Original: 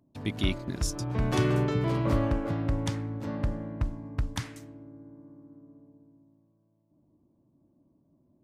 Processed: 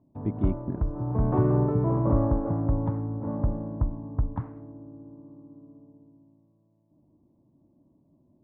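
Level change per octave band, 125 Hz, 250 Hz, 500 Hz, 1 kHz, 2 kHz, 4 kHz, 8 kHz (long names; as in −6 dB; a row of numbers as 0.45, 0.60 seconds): +3.5 dB, +3.0 dB, +2.5 dB, +2.0 dB, below −10 dB, below −30 dB, below −35 dB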